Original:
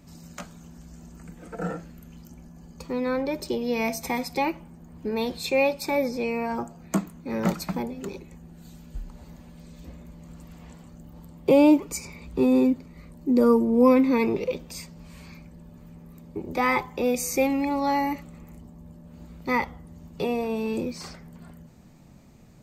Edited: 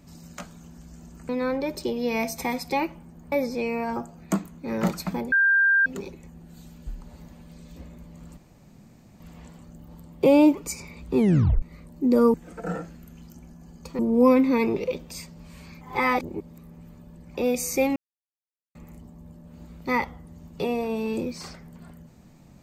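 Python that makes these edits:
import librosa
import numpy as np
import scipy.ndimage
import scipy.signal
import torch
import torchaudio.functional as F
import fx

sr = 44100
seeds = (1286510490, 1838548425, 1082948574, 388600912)

y = fx.edit(x, sr, fx.move(start_s=1.29, length_s=1.65, to_s=13.59),
    fx.cut(start_s=4.97, length_s=0.97),
    fx.insert_tone(at_s=7.94, length_s=0.54, hz=1590.0, db=-16.0),
    fx.insert_room_tone(at_s=10.45, length_s=0.83),
    fx.tape_stop(start_s=12.42, length_s=0.45),
    fx.reverse_span(start_s=15.41, length_s=1.54),
    fx.silence(start_s=17.56, length_s=0.79), tone=tone)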